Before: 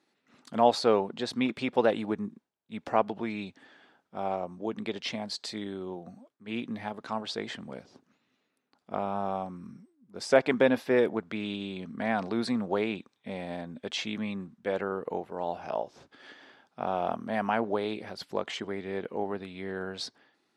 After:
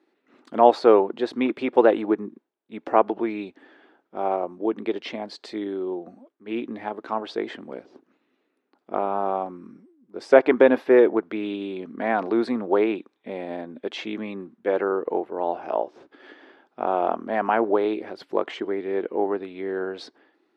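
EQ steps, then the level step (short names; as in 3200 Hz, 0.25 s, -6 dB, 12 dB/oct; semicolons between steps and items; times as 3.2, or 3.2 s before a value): dynamic EQ 1100 Hz, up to +4 dB, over -37 dBFS, Q 0.81; tone controls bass -12 dB, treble -13 dB; bell 330 Hz +12 dB 0.97 oct; +2.5 dB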